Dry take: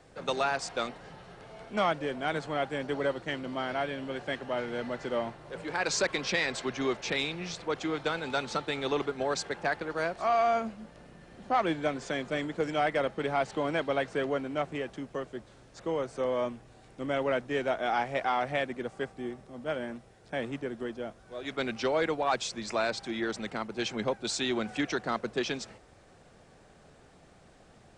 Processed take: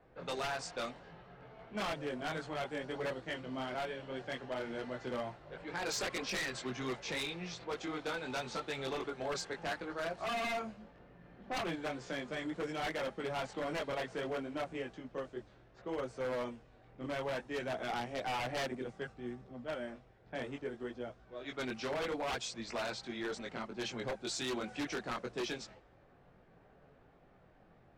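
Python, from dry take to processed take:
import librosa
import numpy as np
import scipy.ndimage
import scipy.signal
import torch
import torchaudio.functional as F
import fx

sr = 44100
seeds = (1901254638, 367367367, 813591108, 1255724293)

y = fx.chorus_voices(x, sr, voices=4, hz=0.61, base_ms=20, depth_ms=4.5, mix_pct=45)
y = 10.0 ** (-28.0 / 20.0) * (np.abs((y / 10.0 ** (-28.0 / 20.0) + 3.0) % 4.0 - 2.0) - 1.0)
y = fx.env_lowpass(y, sr, base_hz=2000.0, full_db=-31.5)
y = F.gain(torch.from_numpy(y), -3.0).numpy()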